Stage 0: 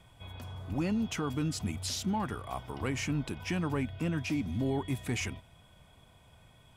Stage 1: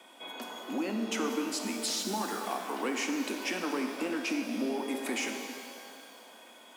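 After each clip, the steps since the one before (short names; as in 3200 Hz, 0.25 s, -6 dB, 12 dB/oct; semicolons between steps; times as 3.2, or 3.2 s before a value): steep high-pass 220 Hz 72 dB/oct; compressor 3:1, threshold -40 dBFS, peak gain reduction 8.5 dB; shimmer reverb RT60 2.2 s, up +12 st, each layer -8 dB, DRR 3.5 dB; gain +7.5 dB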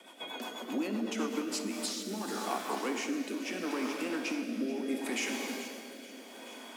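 vocal rider within 4 dB 0.5 s; on a send: echo with dull and thin repeats by turns 0.216 s, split 2000 Hz, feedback 75%, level -8.5 dB; on the sum: rotary speaker horn 8 Hz, later 0.75 Hz, at 1.12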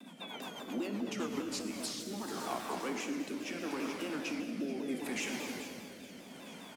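band noise 170–280 Hz -51 dBFS; frequency-shifting echo 0.111 s, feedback 63%, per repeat -31 Hz, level -16 dB; shaped vibrato saw down 5 Hz, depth 160 cents; gain -3.5 dB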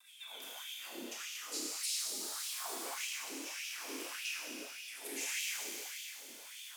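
Schroeder reverb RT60 2.8 s, combs from 26 ms, DRR -4.5 dB; LFO high-pass sine 1.7 Hz 320–2800 Hz; pre-emphasis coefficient 0.9; gain +1 dB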